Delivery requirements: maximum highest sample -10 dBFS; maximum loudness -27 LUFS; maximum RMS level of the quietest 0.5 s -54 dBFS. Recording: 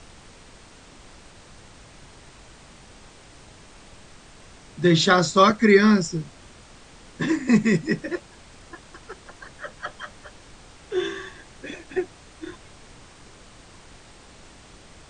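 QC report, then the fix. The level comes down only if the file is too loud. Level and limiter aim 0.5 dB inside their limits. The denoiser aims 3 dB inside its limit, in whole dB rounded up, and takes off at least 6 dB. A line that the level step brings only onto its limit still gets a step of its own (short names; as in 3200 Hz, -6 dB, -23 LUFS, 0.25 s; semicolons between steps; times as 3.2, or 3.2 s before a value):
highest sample -3.5 dBFS: fail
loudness -21.0 LUFS: fail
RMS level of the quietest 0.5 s -48 dBFS: fail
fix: gain -6.5 dB; limiter -10.5 dBFS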